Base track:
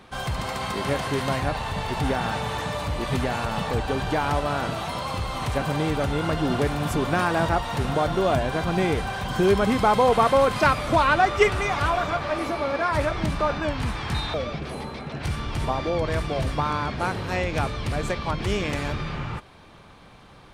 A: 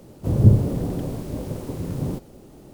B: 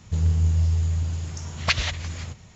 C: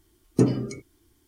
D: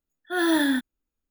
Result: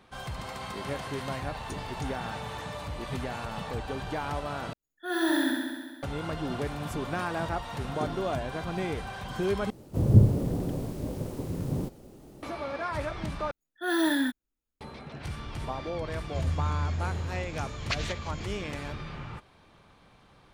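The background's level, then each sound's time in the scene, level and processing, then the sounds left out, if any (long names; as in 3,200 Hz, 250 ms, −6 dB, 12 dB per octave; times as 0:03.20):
base track −9 dB
0:01.31: mix in C −16.5 dB + spectral tilt +3.5 dB per octave
0:04.73: overwrite with D −7.5 dB + flutter between parallel walls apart 11.4 metres, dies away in 1.5 s
0:07.62: mix in C −16 dB
0:09.70: overwrite with A −4 dB
0:13.51: overwrite with D −4 dB
0:16.22: mix in B −9.5 dB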